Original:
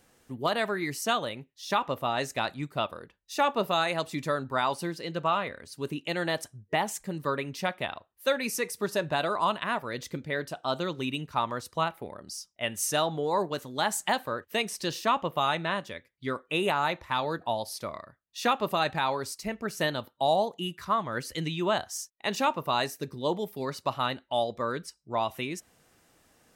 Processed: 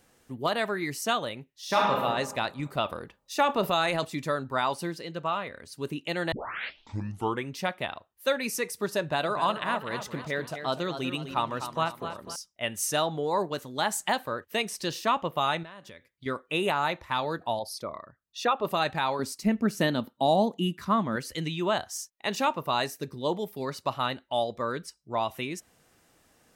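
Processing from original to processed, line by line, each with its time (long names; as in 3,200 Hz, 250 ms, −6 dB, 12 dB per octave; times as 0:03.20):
0:01.50–0:02.00: thrown reverb, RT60 1.3 s, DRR −2.5 dB
0:02.59–0:04.05: transient designer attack +2 dB, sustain +7 dB
0:05.03–0:05.54: clip gain −3 dB
0:06.32: tape start 1.19 s
0:09.00–0:12.36: feedback echo with a swinging delay time 249 ms, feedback 44%, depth 71 cents, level −9.5 dB
0:15.63–0:16.26: downward compressor 5 to 1, threshold −43 dBFS
0:17.59–0:18.65: spectral envelope exaggerated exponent 1.5
0:19.19–0:21.16: parametric band 230 Hz +12.5 dB 0.99 octaves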